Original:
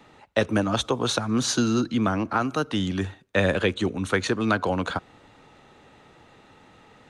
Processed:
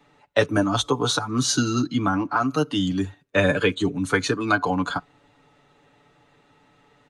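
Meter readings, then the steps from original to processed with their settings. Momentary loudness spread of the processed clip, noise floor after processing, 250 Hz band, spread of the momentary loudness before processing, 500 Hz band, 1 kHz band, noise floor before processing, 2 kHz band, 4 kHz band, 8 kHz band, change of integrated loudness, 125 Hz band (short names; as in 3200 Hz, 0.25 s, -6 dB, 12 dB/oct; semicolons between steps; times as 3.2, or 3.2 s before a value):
5 LU, -60 dBFS, +1.5 dB, 5 LU, +1.5 dB, +3.0 dB, -54 dBFS, +3.0 dB, +2.5 dB, +3.0 dB, +2.0 dB, +1.5 dB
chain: spectral noise reduction 9 dB; comb 6.9 ms, depth 70%; gain +1.5 dB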